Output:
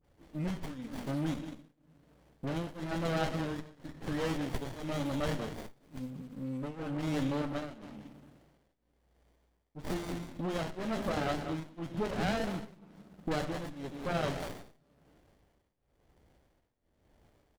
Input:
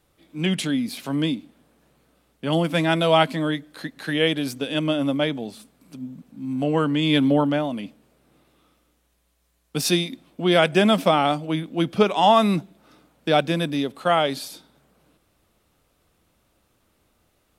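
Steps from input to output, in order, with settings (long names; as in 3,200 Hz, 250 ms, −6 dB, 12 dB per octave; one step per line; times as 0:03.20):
on a send: single-tap delay 192 ms −14 dB
on the sum: rectangular room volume 300 cubic metres, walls mixed, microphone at 0.31 metres
shaped tremolo triangle 1 Hz, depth 95%
0:04.50–0:06.06: high-shelf EQ 2,400 Hz +12 dB
all-pass dispersion highs, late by 45 ms, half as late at 1,100 Hz
in parallel at −1 dB: brickwall limiter −20.5 dBFS, peak gain reduction 15 dB
on the sum: downward compressor 2 to 1, threshold −30 dBFS, peak gain reduction 11 dB
parametric band 230 Hz −7 dB 2.7 octaves
windowed peak hold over 33 samples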